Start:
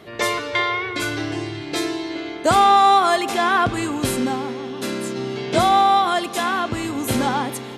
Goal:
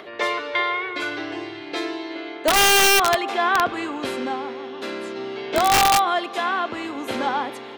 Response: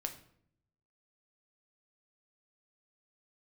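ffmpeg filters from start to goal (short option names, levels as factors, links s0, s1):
-filter_complex "[0:a]acompressor=mode=upward:threshold=0.0251:ratio=2.5,acrossover=split=290 4400:gain=0.112 1 0.141[s0][s1][s2];[s0][s1][s2]amix=inputs=3:normalize=0,aeval=exprs='(mod(2.82*val(0)+1,2)-1)/2.82':c=same,volume=0.891"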